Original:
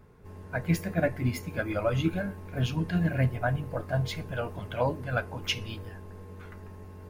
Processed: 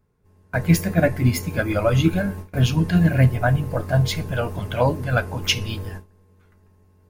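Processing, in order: tone controls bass +3 dB, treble +6 dB; gate with hold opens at -30 dBFS; trim +7.5 dB

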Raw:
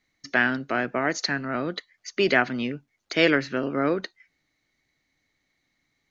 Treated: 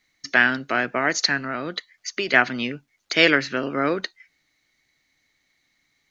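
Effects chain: tilt shelf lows -4 dB, about 1.1 kHz; 1.41–2.34 s: compression 6:1, threshold -27 dBFS, peak gain reduction 8.5 dB; trim +3.5 dB

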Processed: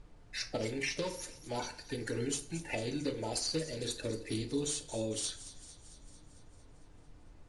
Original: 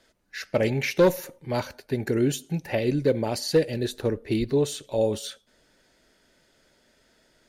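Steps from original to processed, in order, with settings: coarse spectral quantiser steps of 30 dB; pre-emphasis filter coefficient 0.8; gate with hold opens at -59 dBFS; bass shelf 91 Hz -6 dB; hum notches 50/100/150/200/250/300/350/400/450 Hz; compression 10:1, threshold -37 dBFS, peak gain reduction 10 dB; added noise brown -59 dBFS; feedback echo behind a high-pass 225 ms, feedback 64%, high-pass 4.4 kHz, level -12 dB; FDN reverb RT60 0.49 s, low-frequency decay 0.8×, high-frequency decay 0.6×, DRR 4.5 dB; trim +4.5 dB; IMA ADPCM 88 kbps 22.05 kHz

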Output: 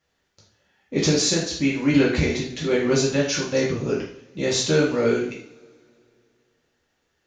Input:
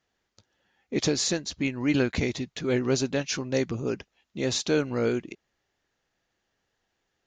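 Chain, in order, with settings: two-slope reverb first 0.52 s, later 2.6 s, from -26 dB, DRR -4.5 dB

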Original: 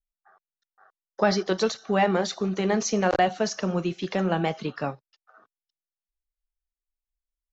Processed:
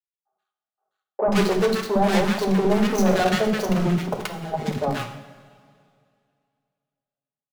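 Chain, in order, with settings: median filter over 25 samples; high-pass 68 Hz 24 dB/octave; comb 4.8 ms, depth 48%; waveshaping leveller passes 5; 3.96–4.76 s: compressor with a negative ratio -19 dBFS, ratio -0.5; flange 1.3 Hz, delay 5.1 ms, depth 8.2 ms, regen -88%; three bands offset in time mids, lows, highs 60/130 ms, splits 330/1100 Hz; on a send at -6 dB: reverberation, pre-delay 3 ms; on the sum: trim -2 dB

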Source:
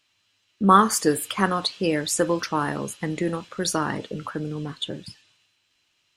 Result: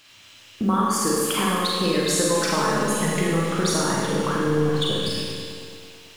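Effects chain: companding laws mixed up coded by mu; 2.30–3.31 s: comb 4.7 ms, depth 83%; compression 6:1, threshold -31 dBFS, peak gain reduction 20 dB; Schroeder reverb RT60 1.6 s, combs from 33 ms, DRR -4 dB; bit-crushed delay 110 ms, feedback 80%, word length 9-bit, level -13 dB; trim +6.5 dB

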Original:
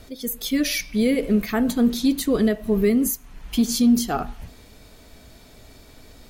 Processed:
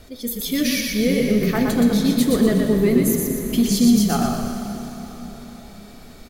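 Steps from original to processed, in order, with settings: frequency-shifting echo 121 ms, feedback 41%, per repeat -32 Hz, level -3.5 dB; plate-style reverb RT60 4.8 s, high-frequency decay 0.75×, DRR 5 dB

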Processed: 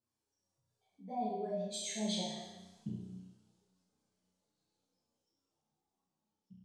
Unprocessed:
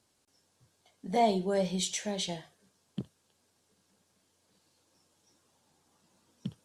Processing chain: spectral contrast enhancement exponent 1.6; Doppler pass-by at 2.58 s, 17 m/s, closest 3.6 m; flutter echo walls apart 5.6 m, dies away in 1.1 s; three-phase chorus; trim +4.5 dB

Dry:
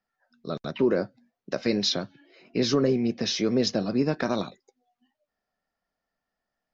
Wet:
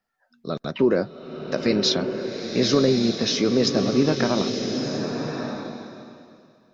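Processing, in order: swelling reverb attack 1200 ms, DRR 4 dB; trim +3.5 dB

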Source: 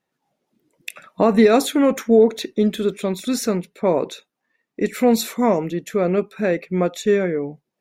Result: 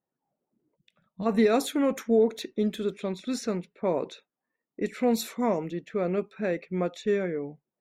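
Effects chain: time-frequency box 0.76–1.26 s, 220–2900 Hz -16 dB; level-controlled noise filter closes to 1.1 kHz, open at -15.5 dBFS; trim -8.5 dB

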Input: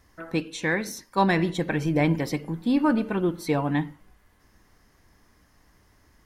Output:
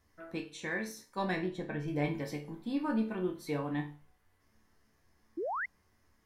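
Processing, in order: 1.36–1.88 s: treble shelf 3.1 kHz -10 dB; chord resonator D2 major, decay 0.33 s; 5.37–5.66 s: painted sound rise 300–2200 Hz -36 dBFS; trim +1 dB

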